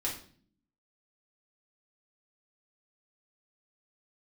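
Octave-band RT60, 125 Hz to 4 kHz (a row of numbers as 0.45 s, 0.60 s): 0.85 s, 0.95 s, 0.55 s, 0.45 s, 0.45 s, 0.45 s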